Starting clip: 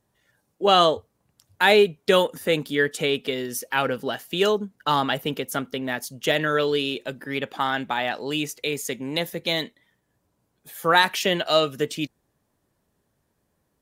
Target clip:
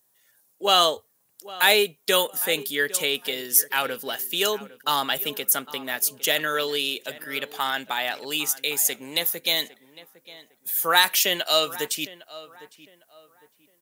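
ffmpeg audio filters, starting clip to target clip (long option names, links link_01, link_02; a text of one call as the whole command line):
ffmpeg -i in.wav -filter_complex "[0:a]aemphasis=mode=production:type=riaa,asplit=2[link_01][link_02];[link_02]adelay=806,lowpass=frequency=2200:poles=1,volume=-17dB,asplit=2[link_03][link_04];[link_04]adelay=806,lowpass=frequency=2200:poles=1,volume=0.31,asplit=2[link_05][link_06];[link_06]adelay=806,lowpass=frequency=2200:poles=1,volume=0.31[link_07];[link_03][link_05][link_07]amix=inputs=3:normalize=0[link_08];[link_01][link_08]amix=inputs=2:normalize=0,volume=-2.5dB" out.wav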